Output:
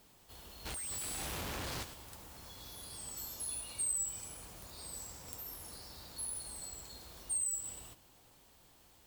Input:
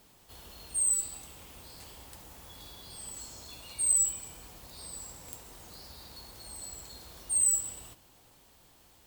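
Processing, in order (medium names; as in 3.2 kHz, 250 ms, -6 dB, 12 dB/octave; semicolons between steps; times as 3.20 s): compression, threshold -30 dBFS, peak gain reduction 9 dB; 0.65–1.83 s: Schmitt trigger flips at -50.5 dBFS; ever faster or slower copies 392 ms, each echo +4 st, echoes 2, each echo -6 dB; trim -3 dB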